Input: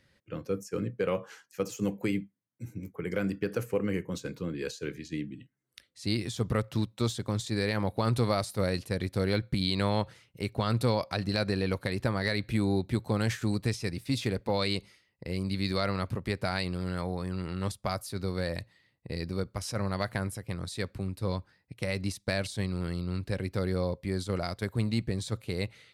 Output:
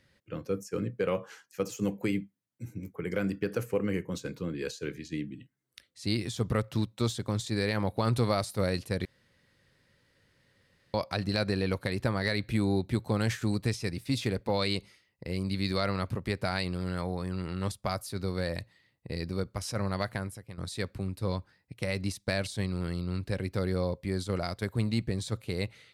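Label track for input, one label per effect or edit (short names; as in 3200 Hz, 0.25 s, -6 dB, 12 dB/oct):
9.050000	10.940000	room tone
19.990000	20.580000	fade out, to -12 dB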